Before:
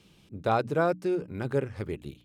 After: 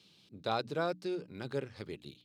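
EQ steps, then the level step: HPF 120 Hz 12 dB/oct; bell 4200 Hz +14 dB 0.92 oct; -8.5 dB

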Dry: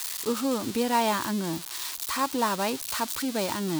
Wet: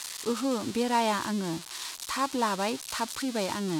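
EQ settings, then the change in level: LPF 9400 Hz 12 dB/oct; -1.5 dB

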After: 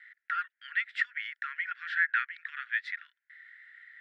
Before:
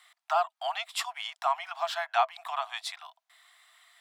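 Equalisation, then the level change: rippled Chebyshev high-pass 1400 Hz, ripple 3 dB; synth low-pass 1800 Hz, resonance Q 5.9; 0.0 dB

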